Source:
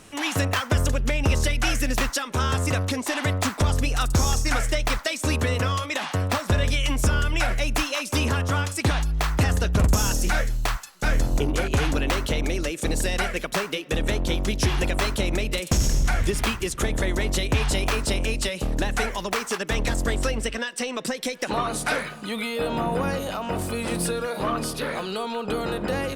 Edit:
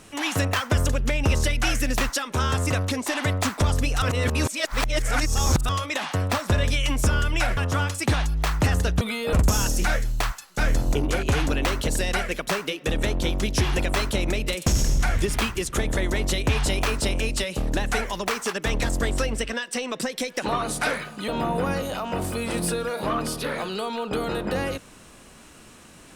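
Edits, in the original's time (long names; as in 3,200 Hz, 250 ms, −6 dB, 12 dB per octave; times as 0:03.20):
0:04.02–0:05.69: reverse
0:07.57–0:08.34: remove
0:12.33–0:12.93: remove
0:22.33–0:22.65: move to 0:09.78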